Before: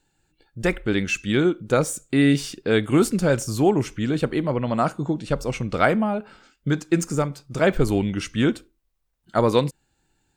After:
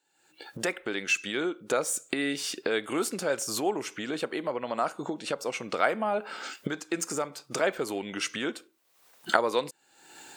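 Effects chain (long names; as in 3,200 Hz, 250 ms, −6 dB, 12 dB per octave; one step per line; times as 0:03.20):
camcorder AGC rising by 52 dB per second
high-pass filter 450 Hz 12 dB per octave
level −5.5 dB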